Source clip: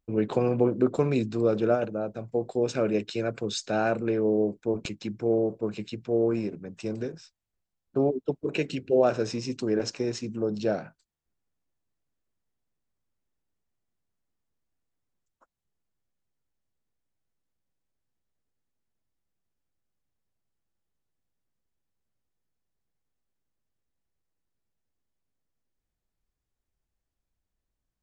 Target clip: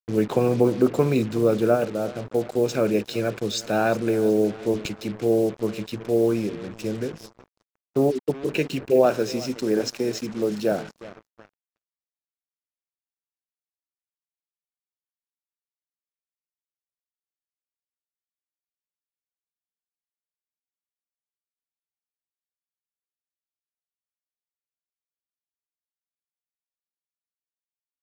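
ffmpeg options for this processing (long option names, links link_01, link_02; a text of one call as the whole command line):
ffmpeg -i in.wav -filter_complex "[0:a]asettb=1/sr,asplit=3[link_01][link_02][link_03];[link_01]atrim=end=9.054[link_04];[link_02]atrim=start=9.05:end=10.72,asetpts=PTS-STARTPTS,afade=type=in:duration=0.004:curve=qsin,afade=type=out:start_time=1.666:duration=0.004:curve=qsin,highpass=150[link_05];[link_03]atrim=start=10.716[link_06];[link_04][link_05]acrossfade=duration=0.004:curve1=hsin:curve2=qsin[link_07];[link_07][link_06]acrossfade=duration=0.004:curve1=qsin:curve2=hsin,aecho=1:1:365|730|1095|1460:0.119|0.057|0.0274|0.0131,acrusher=bits=6:mix=0:aa=0.5,volume=4dB" out.wav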